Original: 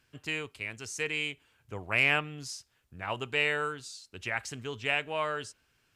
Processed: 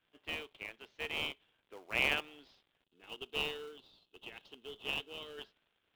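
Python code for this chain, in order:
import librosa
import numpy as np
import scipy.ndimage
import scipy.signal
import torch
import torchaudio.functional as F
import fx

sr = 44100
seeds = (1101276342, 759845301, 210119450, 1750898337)

p1 = scipy.signal.sosfilt(scipy.signal.butter(4, 310.0, 'highpass', fs=sr, output='sos'), x)
p2 = fx.dmg_crackle(p1, sr, seeds[0], per_s=210.0, level_db=-47.0)
p3 = fx.ladder_lowpass(p2, sr, hz=3700.0, resonance_pct=70)
p4 = fx.env_lowpass(p3, sr, base_hz=2100.0, full_db=-26.5)
p5 = fx.spec_box(p4, sr, start_s=2.85, length_s=2.53, low_hz=480.0, high_hz=2500.0, gain_db=-14)
p6 = fx.sample_hold(p5, sr, seeds[1], rate_hz=1800.0, jitter_pct=20)
y = p5 + (p6 * librosa.db_to_amplitude(-7.5))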